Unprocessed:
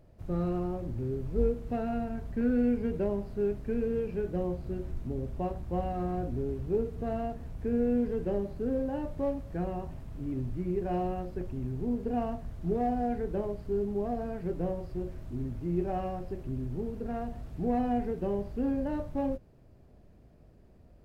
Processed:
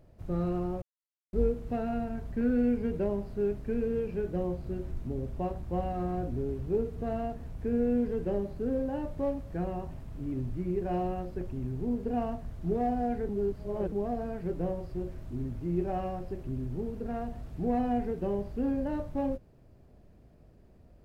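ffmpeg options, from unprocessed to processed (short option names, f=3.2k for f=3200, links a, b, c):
-filter_complex "[0:a]asplit=5[a][b][c][d][e];[a]atrim=end=0.82,asetpts=PTS-STARTPTS,afade=t=out:st=0.816:d=0.004:c=hsin[f];[b]atrim=start=0.82:end=1.33,asetpts=PTS-STARTPTS,volume=0[g];[c]atrim=start=1.33:end=13.292,asetpts=PTS-STARTPTS,afade=t=in:d=0.004:c=hsin[h];[d]atrim=start=13.288:end=13.922,asetpts=PTS-STARTPTS,areverse[i];[e]atrim=start=13.918[j];[f][g][h]concat=n=3:v=0:a=1[k];[k][i]acrossfade=d=0.004:c1=hsin:c2=hsin[l];[l][j]acrossfade=d=0.004:c1=hsin:c2=hsin"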